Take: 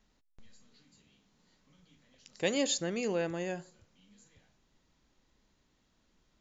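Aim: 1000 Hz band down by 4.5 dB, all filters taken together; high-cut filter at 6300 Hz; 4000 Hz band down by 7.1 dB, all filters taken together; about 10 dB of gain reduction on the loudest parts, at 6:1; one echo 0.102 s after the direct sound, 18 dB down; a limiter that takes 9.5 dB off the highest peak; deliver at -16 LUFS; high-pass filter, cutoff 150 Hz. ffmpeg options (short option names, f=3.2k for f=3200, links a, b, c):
-af "highpass=150,lowpass=6.3k,equalizer=f=1k:t=o:g=-6.5,equalizer=f=4k:t=o:g=-8,acompressor=threshold=-38dB:ratio=6,alimiter=level_in=11.5dB:limit=-24dB:level=0:latency=1,volume=-11.5dB,aecho=1:1:102:0.126,volume=29.5dB"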